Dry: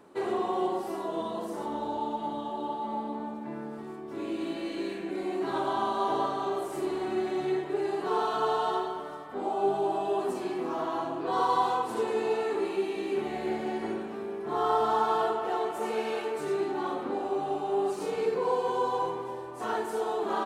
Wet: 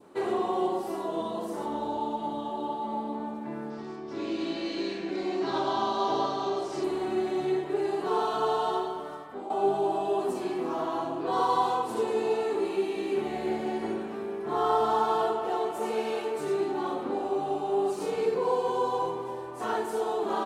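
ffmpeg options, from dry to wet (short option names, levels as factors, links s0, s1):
-filter_complex "[0:a]asettb=1/sr,asplit=3[s0][s1][s2];[s0]atrim=end=3.704[s3];[s1]atrim=start=3.7:end=6.84,asetpts=PTS-STARTPTS,afade=t=in:d=0.004:c=qsin,afade=t=out:st=3.136:d=0.004:c=qsin,lowpass=f=5300:t=q:w=3.2[s4];[s2]atrim=start=6.836[s5];[s3][s4]acrossfade=d=0.004:c1=hsin:c2=qsin[s6];[s6][s5]acrossfade=d=0.004:c1=qsin:c2=hsin,asplit=2[s7][s8];[s7]atrim=end=9.5,asetpts=PTS-STARTPTS,afade=t=out:st=9.01:d=0.49:c=qsin:silence=0.281838[s9];[s8]atrim=start=9.5,asetpts=PTS-STARTPTS,afade=t=in:d=0.004:c=hsin:silence=0.281838[s10];[s9][s10]concat=n=2:v=0:a=1,adynamicequalizer=threshold=0.00708:dfrequency=1700:dqfactor=1.2:tfrequency=1700:tqfactor=1.2:attack=5:release=100:ratio=0.375:range=2.5:mode=cutabove:tftype=bell,volume=1.19"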